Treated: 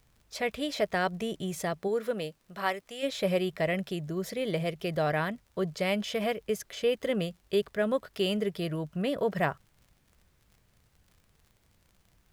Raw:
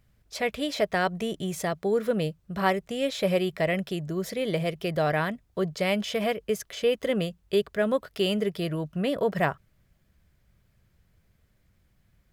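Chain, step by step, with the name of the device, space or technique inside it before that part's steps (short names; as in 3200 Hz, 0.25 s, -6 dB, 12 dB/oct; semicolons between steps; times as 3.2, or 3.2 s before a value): 1.87–3.02 HPF 280 Hz -> 1100 Hz 6 dB/oct; vinyl LP (crackle 50/s -46 dBFS; pink noise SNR 40 dB); gain -3 dB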